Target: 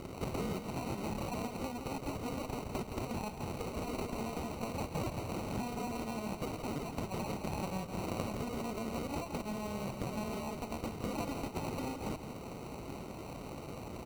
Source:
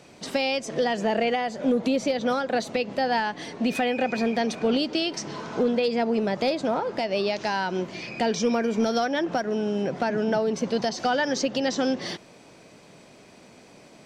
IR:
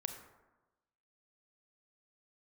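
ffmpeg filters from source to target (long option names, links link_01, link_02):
-af "aeval=exprs='abs(val(0))':channel_layout=same,equalizer=frequency=3200:width_type=o:width=1:gain=10,alimiter=limit=-15.5dB:level=0:latency=1:release=39,acrusher=samples=26:mix=1:aa=0.000001,lowshelf=frequency=270:gain=11.5,acompressor=threshold=-32dB:ratio=6,highpass=frequency=110:poles=1,aecho=1:1:167:0.398,volume=3.5dB"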